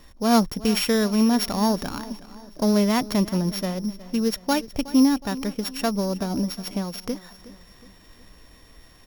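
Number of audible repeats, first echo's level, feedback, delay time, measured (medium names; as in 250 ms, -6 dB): 3, -17.5 dB, 47%, 367 ms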